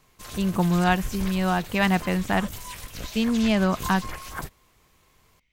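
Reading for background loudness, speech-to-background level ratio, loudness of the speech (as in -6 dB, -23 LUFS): -36.5 LUFS, 12.5 dB, -24.0 LUFS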